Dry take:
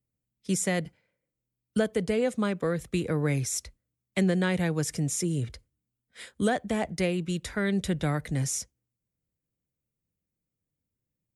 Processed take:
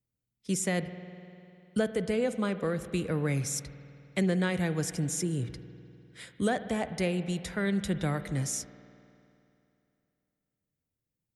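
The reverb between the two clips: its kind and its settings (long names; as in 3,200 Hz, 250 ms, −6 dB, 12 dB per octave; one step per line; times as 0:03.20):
spring reverb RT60 2.8 s, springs 50 ms, chirp 30 ms, DRR 11.5 dB
level −2.5 dB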